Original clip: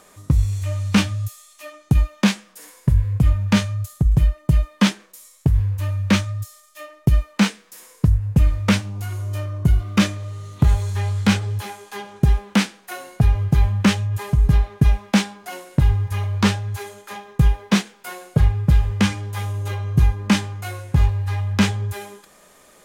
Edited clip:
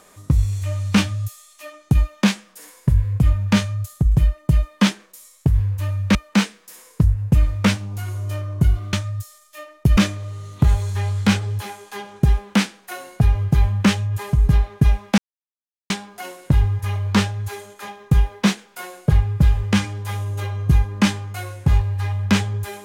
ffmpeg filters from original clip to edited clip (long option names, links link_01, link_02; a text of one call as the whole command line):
ffmpeg -i in.wav -filter_complex "[0:a]asplit=5[link_01][link_02][link_03][link_04][link_05];[link_01]atrim=end=6.152[link_06];[link_02]atrim=start=7.188:end=9.972[link_07];[link_03]atrim=start=6.148:end=7.192[link_08];[link_04]atrim=start=9.968:end=15.18,asetpts=PTS-STARTPTS,afade=type=out:start_time=5.208:duration=0.004:curve=hsin,apad=pad_dur=0.72[link_09];[link_05]atrim=start=15.18,asetpts=PTS-STARTPTS,afade=type=in:duration=0.004:curve=hsin[link_10];[link_06][link_07]acrossfade=duration=0.004:curve1=hsin:curve2=hsin[link_11];[link_11][link_08]acrossfade=duration=0.004:curve1=hsin:curve2=hsin[link_12];[link_09][link_10]concat=n=2:v=0:a=1[link_13];[link_12][link_13]acrossfade=duration=0.004:curve1=hsin:curve2=hsin" out.wav